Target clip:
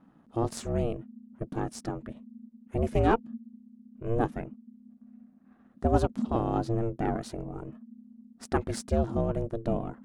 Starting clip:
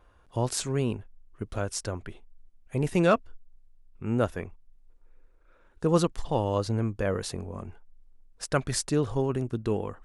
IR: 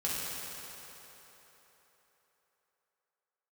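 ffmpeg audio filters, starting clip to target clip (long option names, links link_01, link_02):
-af "aeval=exprs='if(lt(val(0),0),0.708*val(0),val(0))':channel_layout=same,aeval=exprs='val(0)*sin(2*PI*230*n/s)':channel_layout=same,tiltshelf=frequency=1400:gain=5.5,volume=-1dB"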